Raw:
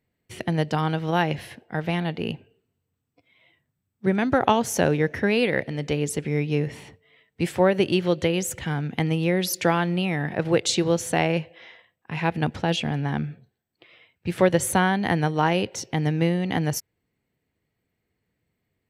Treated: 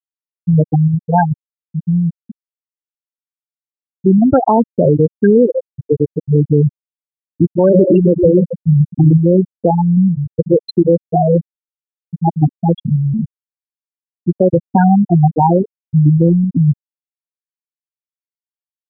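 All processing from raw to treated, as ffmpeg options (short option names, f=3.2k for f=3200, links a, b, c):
-filter_complex "[0:a]asettb=1/sr,asplit=3[a][b][c];[a]atrim=end=6.644[d];[b]atrim=start=6.64:end=9.2,asetpts=PTS-STARTPTS,afade=t=in:d=0.004:c=qsin,afade=t=out:st=2.556:d=0.004:c=qsin,aeval=exprs='val(0)+0.5*0.0355*sgn(val(0))':c=same,highshelf=f=8.9k:g=3,aecho=1:1:140|265|320:0.398|0.299|0.15,atrim=end_sample=112896[e];[c]atrim=start=9.196[f];[d][e]acrossfade=d=0.004:c1=hsin:c2=qsin[g];[g][f]acrossfade=d=0.004:c1=qsin:c2=hsin,afftfilt=real='re*gte(hypot(re,im),0.447)':imag='im*gte(hypot(re,im),0.447)':win_size=1024:overlap=0.75,highshelf=f=2.5k:g=-9.5,alimiter=level_in=16.5dB:limit=-1dB:release=50:level=0:latency=1,volume=-1dB"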